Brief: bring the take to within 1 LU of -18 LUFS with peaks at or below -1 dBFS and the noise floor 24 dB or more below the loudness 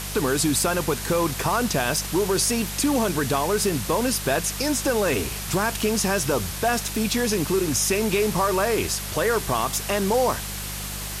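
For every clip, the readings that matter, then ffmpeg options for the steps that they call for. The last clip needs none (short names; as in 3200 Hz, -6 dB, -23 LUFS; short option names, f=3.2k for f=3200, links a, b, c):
hum 50 Hz; harmonics up to 200 Hz; hum level -33 dBFS; noise floor -32 dBFS; noise floor target -47 dBFS; loudness -23.0 LUFS; peak -9.0 dBFS; loudness target -18.0 LUFS
-> -af "bandreject=f=50:t=h:w=4,bandreject=f=100:t=h:w=4,bandreject=f=150:t=h:w=4,bandreject=f=200:t=h:w=4"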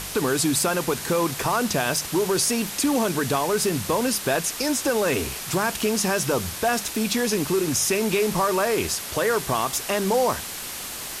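hum none; noise floor -34 dBFS; noise floor target -47 dBFS
-> -af "afftdn=nr=13:nf=-34"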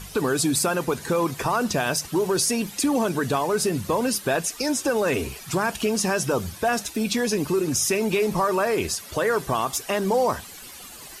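noise floor -42 dBFS; noise floor target -48 dBFS
-> -af "afftdn=nr=6:nf=-42"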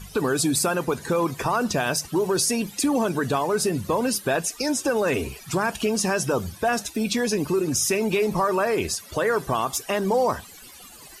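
noise floor -45 dBFS; noise floor target -48 dBFS
-> -af "afftdn=nr=6:nf=-45"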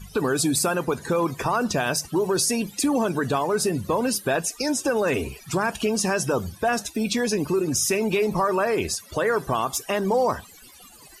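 noise floor -48 dBFS; loudness -24.0 LUFS; peak -10.0 dBFS; loudness target -18.0 LUFS
-> -af "volume=6dB"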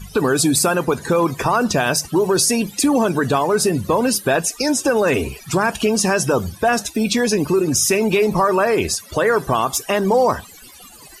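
loudness -18.0 LUFS; peak -4.0 dBFS; noise floor -42 dBFS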